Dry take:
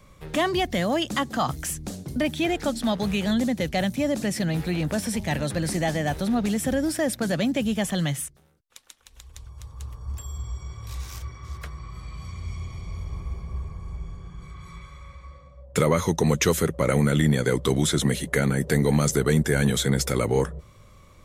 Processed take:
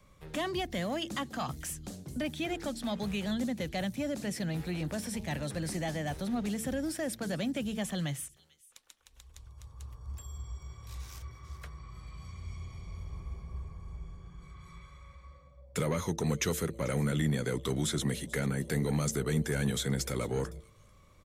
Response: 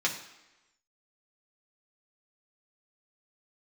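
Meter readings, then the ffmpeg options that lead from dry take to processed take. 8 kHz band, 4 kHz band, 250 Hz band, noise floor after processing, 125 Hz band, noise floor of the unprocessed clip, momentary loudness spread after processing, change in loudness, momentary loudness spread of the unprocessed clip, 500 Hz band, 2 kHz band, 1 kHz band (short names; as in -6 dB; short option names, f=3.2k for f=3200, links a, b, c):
-8.5 dB, -8.5 dB, -9.0 dB, -60 dBFS, -8.5 dB, -52 dBFS, 17 LU, -9.5 dB, 17 LU, -10.5 dB, -9.5 dB, -10.5 dB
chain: -filter_complex "[0:a]bandreject=f=111.9:t=h:w=4,bandreject=f=223.8:t=h:w=4,bandreject=f=335.7:t=h:w=4,bandreject=f=447.6:t=h:w=4,acrossover=split=290|2300[a][b][c];[b]asoftclip=type=tanh:threshold=-21dB[d];[c]aecho=1:1:441:0.106[e];[a][d][e]amix=inputs=3:normalize=0,volume=-8.5dB"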